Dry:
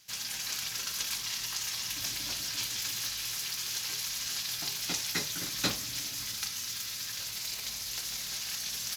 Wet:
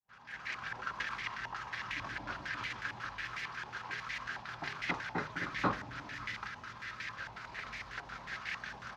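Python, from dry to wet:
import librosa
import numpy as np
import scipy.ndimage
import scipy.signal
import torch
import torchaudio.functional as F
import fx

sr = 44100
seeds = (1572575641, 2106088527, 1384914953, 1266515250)

y = fx.fade_in_head(x, sr, length_s=0.69)
y = fx.filter_held_lowpass(y, sr, hz=11.0, low_hz=870.0, high_hz=2000.0)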